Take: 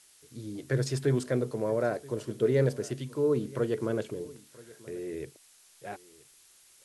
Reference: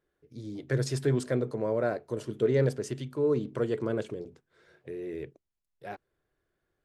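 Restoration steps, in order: noise print and reduce 21 dB; inverse comb 979 ms -22 dB

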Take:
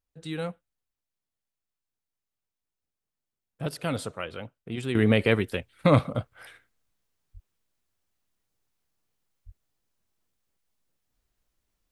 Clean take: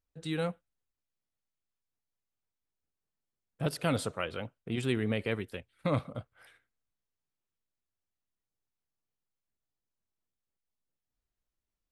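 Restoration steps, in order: de-plosive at 7.33/9.45 s; trim 0 dB, from 4.95 s -10.5 dB

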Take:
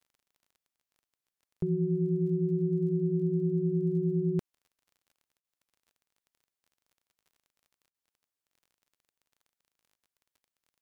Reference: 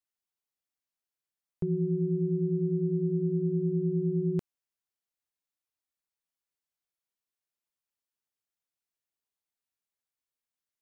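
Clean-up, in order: de-click; interpolate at 5.40/7.90 s, 41 ms

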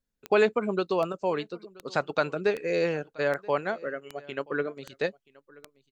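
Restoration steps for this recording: de-click; inverse comb 978 ms -23.5 dB

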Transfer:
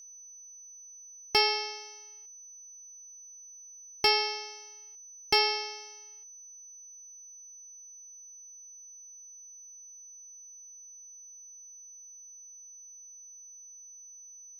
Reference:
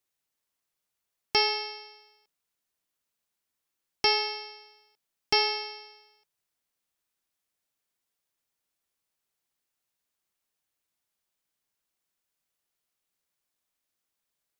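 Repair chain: clip repair -14.5 dBFS; band-stop 6 kHz, Q 30

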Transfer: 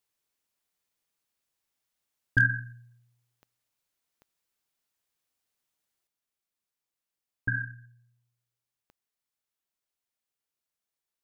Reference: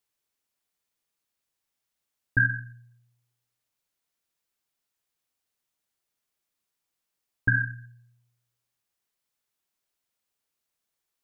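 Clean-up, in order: clip repair -12.5 dBFS; de-click; trim 0 dB, from 6.07 s +6.5 dB

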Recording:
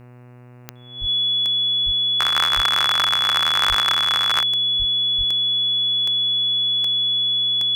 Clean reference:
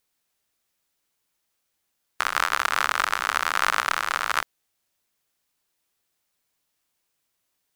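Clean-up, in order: de-click; de-hum 123.1 Hz, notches 23; band-stop 3.4 kHz, Q 30; de-plosive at 1.00/1.85/2.55/3.68/4.78/5.17 s

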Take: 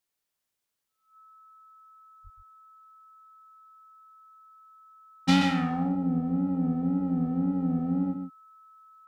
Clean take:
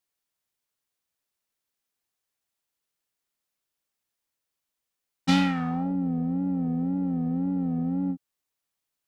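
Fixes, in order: band-stop 1.3 kHz, Q 30; 2.23–2.35 s: high-pass 140 Hz 24 dB/octave; inverse comb 129 ms -7.5 dB

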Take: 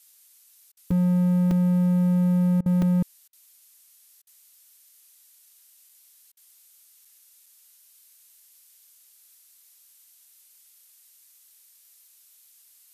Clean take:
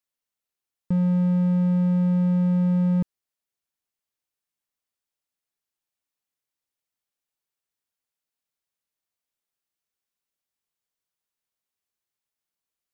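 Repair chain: interpolate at 0.91/1.51/2.82/5.89/7.05/7.46 s, 3.2 ms; interpolate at 0.72/2.61/3.28/4.22/6.32 s, 48 ms; noise print and reduce 30 dB

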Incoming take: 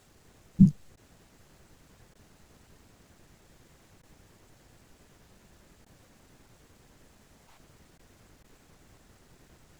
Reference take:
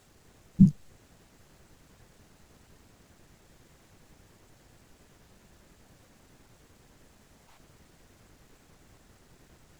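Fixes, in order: interpolate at 0.96/2.14/4.02/5.85/7.98/8.43 s, 11 ms

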